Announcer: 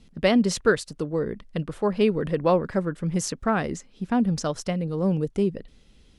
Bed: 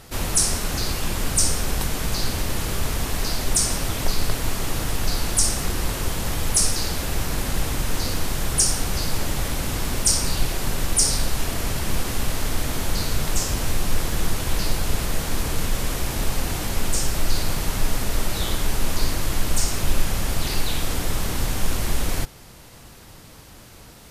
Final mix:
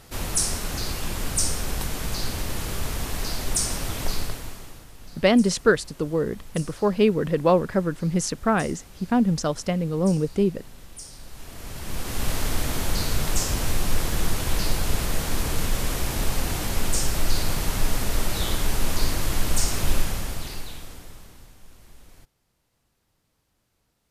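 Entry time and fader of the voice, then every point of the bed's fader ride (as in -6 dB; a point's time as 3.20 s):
5.00 s, +2.0 dB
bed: 4.16 s -4 dB
4.89 s -22 dB
11.12 s -22 dB
12.29 s -1 dB
19.95 s -1 dB
21.58 s -27 dB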